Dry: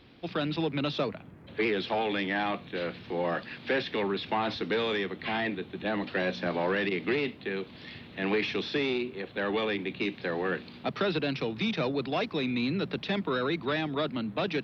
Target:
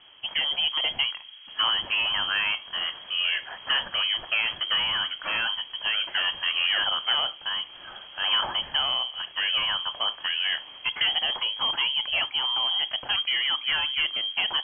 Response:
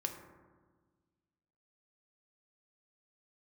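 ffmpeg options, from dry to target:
-filter_complex "[0:a]lowpass=f=2900:t=q:w=0.5098,lowpass=f=2900:t=q:w=0.6013,lowpass=f=2900:t=q:w=0.9,lowpass=f=2900:t=q:w=2.563,afreqshift=-3400,asplit=2[s0][s1];[1:a]atrim=start_sample=2205,atrim=end_sample=3528[s2];[s1][s2]afir=irnorm=-1:irlink=0,volume=0.562[s3];[s0][s3]amix=inputs=2:normalize=0"

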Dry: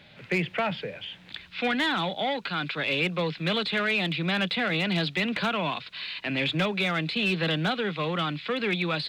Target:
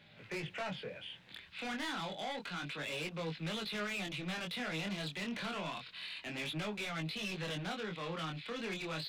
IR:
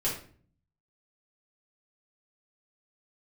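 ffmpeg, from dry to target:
-af "asoftclip=type=tanh:threshold=0.0398,flanger=delay=18.5:depth=7.4:speed=0.29,volume=0.562"

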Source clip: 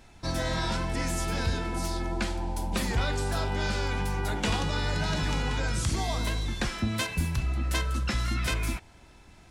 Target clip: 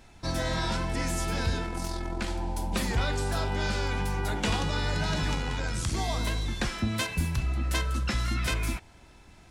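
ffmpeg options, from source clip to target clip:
-filter_complex "[0:a]asettb=1/sr,asplit=3[s0][s1][s2];[s0]atrim=end=1.654[s3];[s1]atrim=start=1.65:end=2.28,asetpts=PTS-STARTPTS,afade=t=in:d=0.004:c=qsin,afade=t=out:st=0.626:d=0.004:c=qsin,aeval=exprs='(tanh(11.2*val(0)+0.55)-tanh(0.55))/11.2':c=same[s4];[s2]atrim=start=2.276[s5];[s3][s4]acrossfade=d=0.004:c1=hsin:c2=qsin[s6];[s6][s5]acrossfade=d=0.004:c1=qsin:c2=hsin,asettb=1/sr,asplit=3[s7][s8][s9];[s7]atrim=end=5.354[s10];[s8]atrim=start=5.35:end=5.95,asetpts=PTS-STARTPTS,afade=t=in:d=0.004:c=qsin,afade=t=out:st=0.596:d=0.004:c=qsin,tremolo=f=86:d=0.462[s11];[s9]atrim=start=5.946[s12];[s10][s11]acrossfade=d=0.004:c1=hsin:c2=qsin[s13];[s13][s12]acrossfade=d=0.004:c1=qsin:c2=hsin"

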